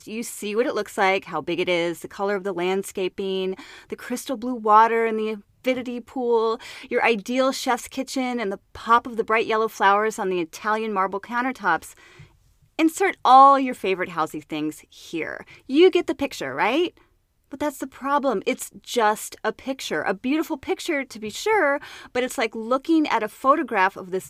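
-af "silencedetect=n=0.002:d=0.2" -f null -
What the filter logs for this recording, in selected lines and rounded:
silence_start: 17.12
silence_end: 17.44 | silence_duration: 0.32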